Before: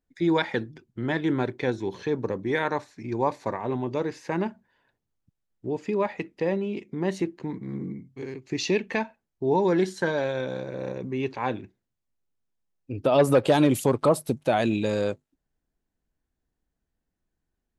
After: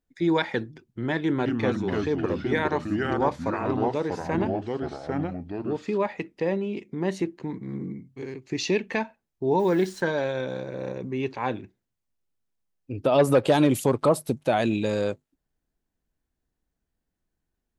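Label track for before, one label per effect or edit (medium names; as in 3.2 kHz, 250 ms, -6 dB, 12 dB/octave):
1.180000	5.980000	ever faster or slower copies 209 ms, each echo -3 st, echoes 2
9.590000	10.010000	send-on-delta sampling step -46.5 dBFS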